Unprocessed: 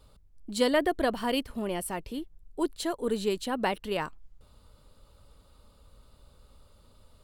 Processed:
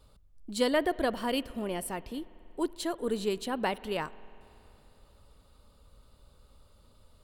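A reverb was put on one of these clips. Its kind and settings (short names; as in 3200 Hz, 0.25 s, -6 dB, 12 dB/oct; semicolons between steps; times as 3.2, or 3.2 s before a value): spring tank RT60 3.2 s, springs 47 ms, chirp 80 ms, DRR 19 dB; gain -2 dB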